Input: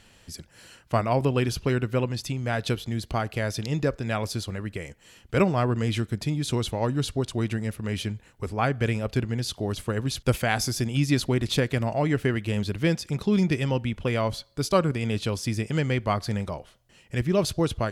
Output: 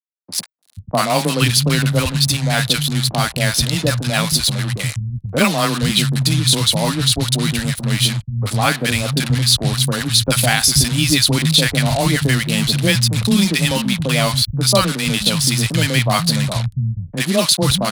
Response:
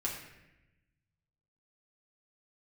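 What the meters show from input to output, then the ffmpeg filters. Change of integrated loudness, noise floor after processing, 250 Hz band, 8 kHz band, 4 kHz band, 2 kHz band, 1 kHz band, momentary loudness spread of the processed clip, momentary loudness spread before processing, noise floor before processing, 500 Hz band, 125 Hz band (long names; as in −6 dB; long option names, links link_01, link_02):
+10.5 dB, −40 dBFS, +7.5 dB, +19.0 dB, +19.0 dB, +12.0 dB, +8.0 dB, 7 LU, 8 LU, −57 dBFS, +4.5 dB, +9.5 dB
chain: -filter_complex "[0:a]acrusher=bits=5:mix=0:aa=0.5,afreqshift=15,equalizer=frequency=100:width_type=o:width=0.67:gain=4,equalizer=frequency=400:width_type=o:width=0.67:gain=-11,equalizer=frequency=4000:width_type=o:width=0.67:gain=11,equalizer=frequency=10000:width_type=o:width=0.67:gain=12,acrossover=split=170|880[link_01][link_02][link_03];[link_03]adelay=40[link_04];[link_01]adelay=480[link_05];[link_05][link_02][link_04]amix=inputs=3:normalize=0,alimiter=level_in=12dB:limit=-1dB:release=50:level=0:latency=1,volume=-1dB"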